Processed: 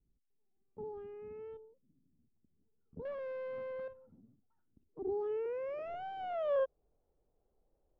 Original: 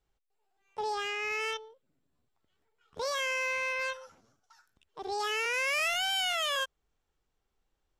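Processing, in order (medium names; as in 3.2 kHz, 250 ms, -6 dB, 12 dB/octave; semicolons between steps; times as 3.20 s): low-pass sweep 230 Hz -> 580 Hz, 4.38–6.78 s; 3.05–3.88 s: overdrive pedal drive 23 dB, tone 1.3 kHz, clips at -34.5 dBFS; trim +2 dB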